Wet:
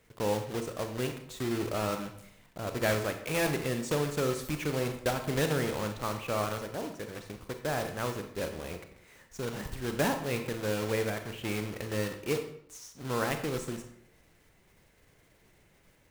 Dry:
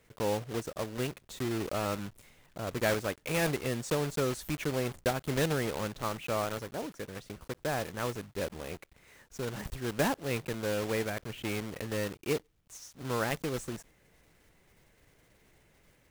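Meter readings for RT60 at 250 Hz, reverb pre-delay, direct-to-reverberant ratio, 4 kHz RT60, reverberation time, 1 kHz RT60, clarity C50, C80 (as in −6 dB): 0.70 s, 29 ms, 6.0 dB, 0.50 s, 0.70 s, 0.65 s, 8.5 dB, 11.0 dB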